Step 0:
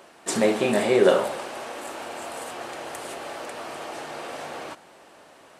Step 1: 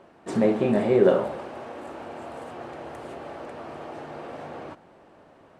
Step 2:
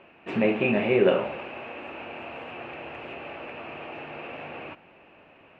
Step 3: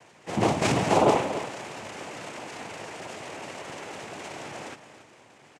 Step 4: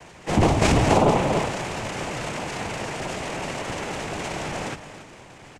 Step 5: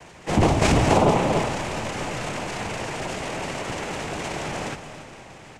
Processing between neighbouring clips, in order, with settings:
low-pass 1.2 kHz 6 dB/octave; bass shelf 240 Hz +10.5 dB; trim -2.5 dB
resonant low-pass 2.6 kHz, resonance Q 9.4; trim -2.5 dB
noise-vocoded speech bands 4; delay 280 ms -12.5 dB
octave divider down 1 oct, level +2 dB; compression 4:1, threshold -23 dBFS, peak gain reduction 8 dB; trim +8 dB
reverberation RT60 4.9 s, pre-delay 50 ms, DRR 13 dB

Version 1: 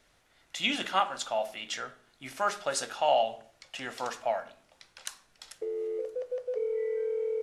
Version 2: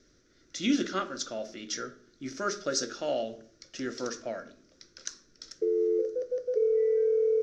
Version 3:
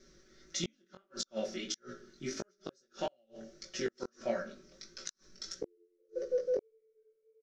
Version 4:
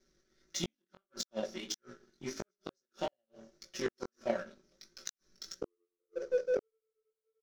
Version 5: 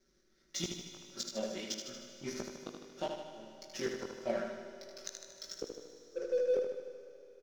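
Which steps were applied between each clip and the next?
FFT filter 150 Hz 0 dB, 350 Hz +9 dB, 590 Hz -6 dB, 830 Hz -24 dB, 1.4 kHz -4 dB, 2.8 kHz -14 dB, 5.9 kHz +5 dB, 9.6 kHz -28 dB; trim +4 dB
comb 5.3 ms, depth 89%; inverted gate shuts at -22 dBFS, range -42 dB; chorus 1.6 Hz, delay 16.5 ms, depth 5.3 ms; trim +3 dB
power-law waveshaper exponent 1.4; trim +3.5 dB
in parallel at -5 dB: overload inside the chain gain 32 dB; on the sum: feedback delay 77 ms, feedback 59%, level -5.5 dB; reverberation RT60 3.6 s, pre-delay 25 ms, DRR 8.5 dB; trim -4.5 dB

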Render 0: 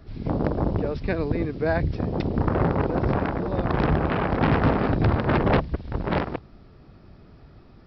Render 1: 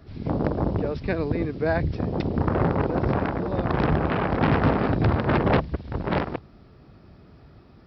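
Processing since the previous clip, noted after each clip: high-pass 50 Hz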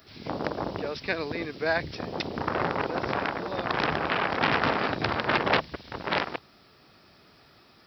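tilt EQ +4.5 dB/octave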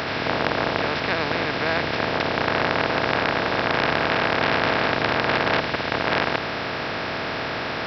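spectral levelling over time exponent 0.2; trim -3 dB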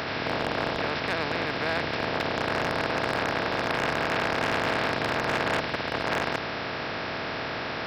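hard clipper -13.5 dBFS, distortion -15 dB; trim -4.5 dB

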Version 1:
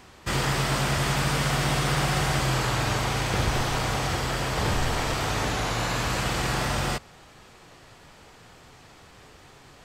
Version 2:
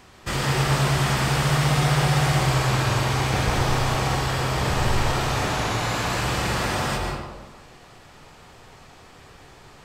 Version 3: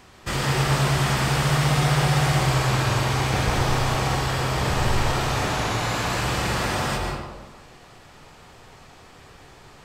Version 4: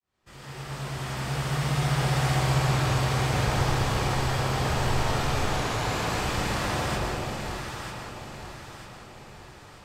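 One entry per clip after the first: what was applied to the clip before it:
reverberation RT60 1.3 s, pre-delay 118 ms, DRR 0.5 dB
no audible change
fade-in on the opening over 2.27 s; echo whose repeats swap between lows and highs 472 ms, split 850 Hz, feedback 65%, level -2.5 dB; trim -5 dB

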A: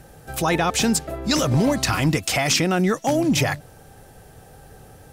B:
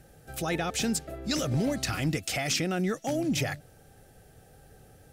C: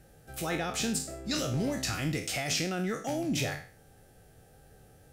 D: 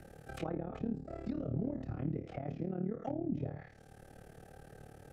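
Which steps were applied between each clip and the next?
peaking EQ 1 kHz -12.5 dB 0.33 oct; trim -8.5 dB
spectral sustain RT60 0.43 s; trim -4 dB
AM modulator 37 Hz, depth 80%; low-pass that closes with the level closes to 480 Hz, closed at -32 dBFS; three bands compressed up and down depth 40%

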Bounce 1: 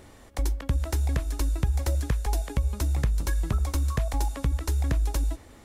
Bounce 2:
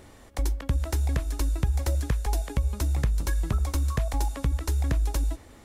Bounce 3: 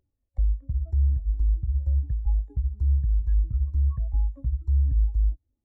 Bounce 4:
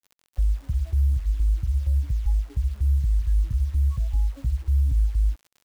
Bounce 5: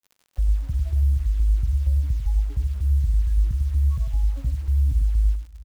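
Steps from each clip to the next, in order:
no audible change
compression 12:1, threshold -29 dBFS, peak gain reduction 11 dB; spectral contrast expander 2.5:1
in parallel at +0.5 dB: peak limiter -22.5 dBFS, peak gain reduction 7 dB; on the sum: crackle 56 per s -39 dBFS; bit crusher 8-bit; trim -3 dB
delay 98 ms -7 dB; on a send at -22 dB: reverberation RT60 3.9 s, pre-delay 63 ms

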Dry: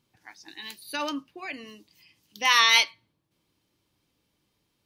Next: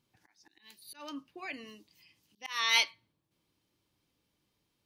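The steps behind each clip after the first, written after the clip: slow attack 370 ms; trim -4.5 dB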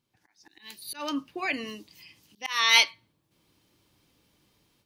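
level rider gain up to 13.5 dB; trim -2 dB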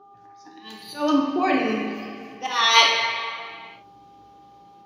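mains buzz 400 Hz, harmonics 3, -59 dBFS 0 dB/octave; reverberation RT60 2.2 s, pre-delay 3 ms, DRR -4 dB; trim -3.5 dB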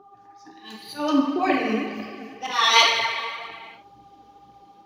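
phaser 2 Hz, delay 4.6 ms, feedback 45%; trim -1.5 dB

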